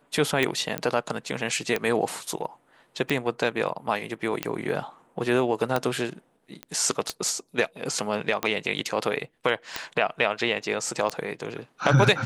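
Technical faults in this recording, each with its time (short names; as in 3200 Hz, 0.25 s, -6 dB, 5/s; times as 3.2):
tick 45 rpm -10 dBFS
0.78 pop -10 dBFS
6.63 pop -20 dBFS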